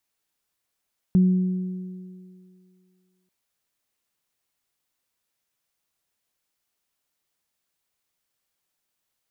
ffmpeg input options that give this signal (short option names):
-f lavfi -i "aevalsrc='0.237*pow(10,-3*t/2.14)*sin(2*PI*184*t)+0.0266*pow(10,-3*t/2.82)*sin(2*PI*368*t)':d=2.14:s=44100"